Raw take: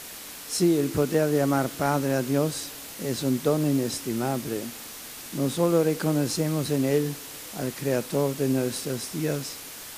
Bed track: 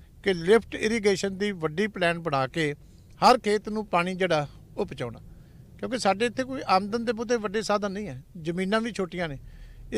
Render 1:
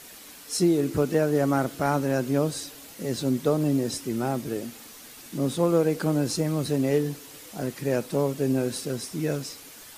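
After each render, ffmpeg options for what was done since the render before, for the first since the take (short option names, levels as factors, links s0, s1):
-af "afftdn=nr=7:nf=-41"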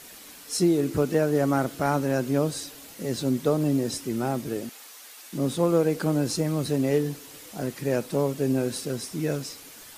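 -filter_complex "[0:a]asettb=1/sr,asplit=3[s0][s1][s2];[s0]atrim=end=4.694[s3];[s1]atrim=start=4.69:end=5.33,asetpts=PTS-STARTPTS,afade=t=in:d=0.004:c=qsin,afade=t=out:st=0.636:d=0.004:c=qsin,highpass=630[s4];[s2]atrim=start=5.326[s5];[s3][s4]acrossfade=d=0.004:c1=hsin:c2=qsin[s6];[s6][s5]acrossfade=d=0.004:c1=qsin:c2=hsin"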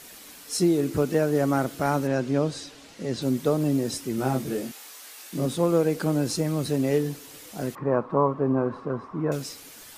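-filter_complex "[0:a]asettb=1/sr,asplit=3[s0][s1][s2];[s0]atrim=end=2.074[s3];[s1]atrim=start=2.07:end=3.22,asetpts=PTS-STARTPTS,afade=t=in:d=0.004:c=qsin,afade=t=out:st=1.146:d=0.004:c=qsin,lowpass=5900[s4];[s2]atrim=start=3.216[s5];[s3][s4]acrossfade=d=0.004:c1=hsin:c2=qsin[s6];[s6][s5]acrossfade=d=0.004:c1=qsin:c2=hsin,asettb=1/sr,asplit=3[s7][s8][s9];[s7]atrim=end=4.164[s10];[s8]atrim=start=4.16:end=5.46,asetpts=PTS-STARTPTS,afade=t=in:d=0.004:c=qsin,afade=t=out:st=1.296:d=0.004:c=qsin,asplit=2[s11][s12];[s12]adelay=23,volume=0.708[s13];[s11][s13]amix=inputs=2:normalize=0,atrim=end_sample=57330[s14];[s9]atrim=start=5.456[s15];[s10][s14]acrossfade=d=0.004:c1=hsin:c2=qsin[s16];[s16][s15]acrossfade=d=0.004:c1=qsin:c2=hsin,asettb=1/sr,asplit=3[s17][s18][s19];[s17]atrim=end=7.754[s20];[s18]atrim=start=7.75:end=9.32,asetpts=PTS-STARTPTS,afade=t=in:d=0.004:c=qsin,afade=t=out:st=1.566:d=0.004:c=qsin,lowpass=f=1100:t=q:w=7.6[s21];[s19]atrim=start=9.316[s22];[s20][s21]acrossfade=d=0.004:c1=hsin:c2=qsin[s23];[s23][s22]acrossfade=d=0.004:c1=qsin:c2=hsin"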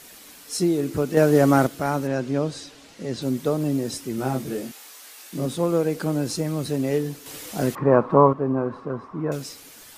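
-filter_complex "[0:a]asplit=5[s0][s1][s2][s3][s4];[s0]atrim=end=1.172[s5];[s1]atrim=start=1.168:end=1.672,asetpts=PTS-STARTPTS,volume=2.11[s6];[s2]atrim=start=1.668:end=7.262[s7];[s3]atrim=start=7.258:end=8.332,asetpts=PTS-STARTPTS,volume=2.24[s8];[s4]atrim=start=8.328[s9];[s5][s6]acrossfade=d=0.004:c1=hsin:c2=hsin[s10];[s10][s7]acrossfade=d=0.004:c1=hsin:c2=hsin[s11];[s11][s8]acrossfade=d=0.004:c1=hsin:c2=hsin[s12];[s12][s9]acrossfade=d=0.004:c1=hsin:c2=hsin"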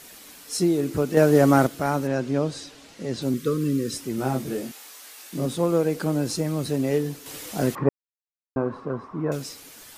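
-filter_complex "[0:a]asettb=1/sr,asplit=3[s0][s1][s2];[s0]atrim=end=3.344[s3];[s1]atrim=start=3.34:end=3.96,asetpts=PTS-STARTPTS,afade=t=in:d=0.004:c=qsin,afade=t=out:st=0.616:d=0.004:c=qsin,asuperstop=centerf=760:order=12:qfactor=1.4[s4];[s2]atrim=start=3.956[s5];[s3][s4]acrossfade=d=0.004:c1=hsin:c2=qsin[s6];[s6][s5]acrossfade=d=0.004:c1=qsin:c2=hsin,asplit=3[s7][s8][s9];[s7]atrim=end=7.89,asetpts=PTS-STARTPTS,afade=t=out:st=7.886:d=0.004:c=hsin[s10];[s8]atrim=start=7.89:end=8.56,asetpts=PTS-STARTPTS,volume=0[s11];[s9]atrim=start=8.56,asetpts=PTS-STARTPTS,afade=t=in:d=0.004:c=hsin[s12];[s10][s11][s12]concat=n=3:v=0:a=1"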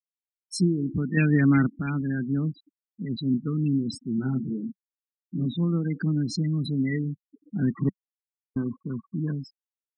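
-af "afftfilt=real='re*gte(hypot(re,im),0.0562)':imag='im*gte(hypot(re,im),0.0562)':win_size=1024:overlap=0.75,firequalizer=gain_entry='entry(130,0);entry(190,7);entry(560,-25);entry(2200,14);entry(4800,-2)':delay=0.05:min_phase=1"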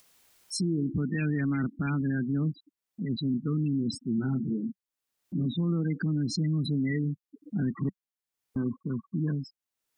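-af "acompressor=mode=upward:threshold=0.0158:ratio=2.5,alimiter=limit=0.0841:level=0:latency=1:release=35"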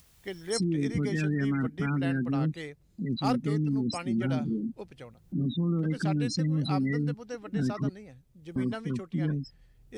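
-filter_complex "[1:a]volume=0.211[s0];[0:a][s0]amix=inputs=2:normalize=0"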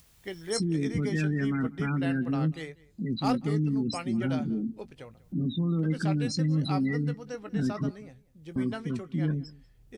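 -filter_complex "[0:a]asplit=2[s0][s1];[s1]adelay=19,volume=0.224[s2];[s0][s2]amix=inputs=2:normalize=0,asplit=2[s3][s4];[s4]adelay=192.4,volume=0.0794,highshelf=f=4000:g=-4.33[s5];[s3][s5]amix=inputs=2:normalize=0"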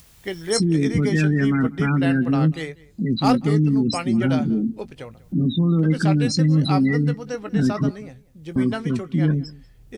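-af "volume=2.82"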